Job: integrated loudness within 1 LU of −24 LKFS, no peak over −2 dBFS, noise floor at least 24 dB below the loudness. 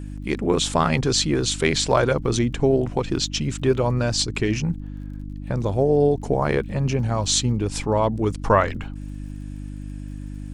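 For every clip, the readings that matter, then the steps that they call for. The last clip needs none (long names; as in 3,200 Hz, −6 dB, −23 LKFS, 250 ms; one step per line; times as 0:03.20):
crackle rate 50 per second; mains hum 50 Hz; hum harmonics up to 300 Hz; level of the hum −31 dBFS; integrated loudness −22.0 LKFS; sample peak −4.0 dBFS; target loudness −24.0 LKFS
→ click removal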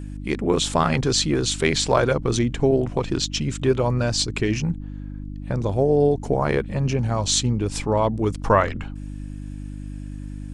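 crackle rate 0.19 per second; mains hum 50 Hz; hum harmonics up to 300 Hz; level of the hum −31 dBFS
→ hum removal 50 Hz, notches 6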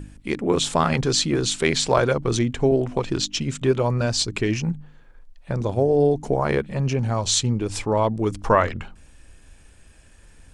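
mains hum none found; integrated loudness −22.0 LKFS; sample peak −3.5 dBFS; target loudness −24.0 LKFS
→ level −2 dB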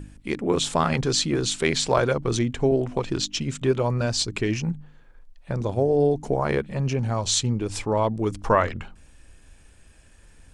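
integrated loudness −24.0 LKFS; sample peak −5.5 dBFS; background noise floor −52 dBFS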